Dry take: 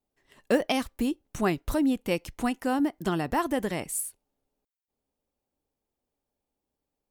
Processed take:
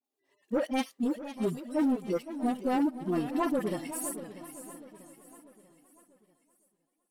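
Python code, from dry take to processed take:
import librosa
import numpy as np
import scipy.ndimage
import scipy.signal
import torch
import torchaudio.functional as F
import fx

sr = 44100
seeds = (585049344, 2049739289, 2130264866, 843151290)

y = fx.hpss_only(x, sr, part='harmonic')
y = scipy.signal.sosfilt(scipy.signal.butter(2, 240.0, 'highpass', fs=sr, output='sos'), y)
y = fx.peak_eq(y, sr, hz=8800.0, db=3.5, octaves=1.8)
y = fx.notch(y, sr, hz=1500.0, q=7.7)
y = 10.0 ** (-24.0 / 20.0) * np.tanh(y / 10.0 ** (-24.0 / 20.0))
y = fx.dispersion(y, sr, late='highs', ms=45.0, hz=1100.0)
y = fx.leveller(y, sr, passes=1)
y = fx.echo_feedback(y, sr, ms=642, feedback_pct=46, wet_db=-15)
y = fx.echo_warbled(y, sr, ms=512, feedback_pct=36, rate_hz=2.8, cents=133, wet_db=-13)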